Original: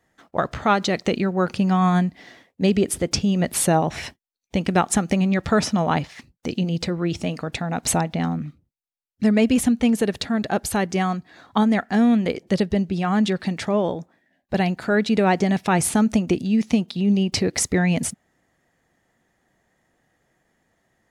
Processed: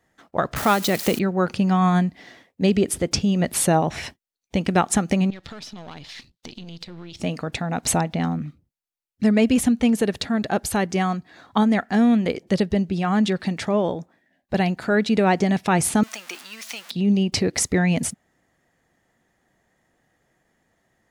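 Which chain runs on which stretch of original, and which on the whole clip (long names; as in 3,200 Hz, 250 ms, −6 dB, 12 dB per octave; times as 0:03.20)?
0:00.56–0:01.19: spike at every zero crossing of −20.5 dBFS + multiband upward and downward compressor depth 40%
0:05.30–0:07.20: gain on one half-wave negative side −7 dB + parametric band 3,900 Hz +14 dB 1.3 octaves + downward compressor 10 to 1, threshold −34 dBFS
0:16.03–0:16.91: converter with a step at zero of −29.5 dBFS + high-pass filter 1,300 Hz
whole clip: no processing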